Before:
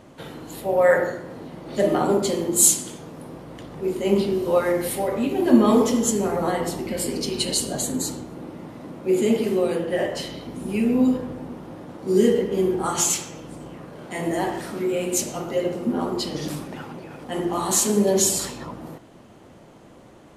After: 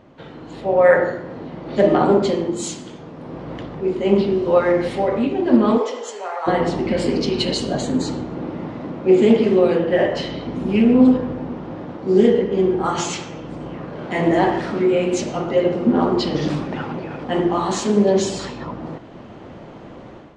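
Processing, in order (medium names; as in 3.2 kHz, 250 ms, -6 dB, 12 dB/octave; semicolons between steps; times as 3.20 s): 5.77–6.46 s: high-pass 360 Hz -> 790 Hz 24 dB/octave; level rider gain up to 11 dB; Gaussian low-pass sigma 1.8 samples; loudspeaker Doppler distortion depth 0.15 ms; trim -1 dB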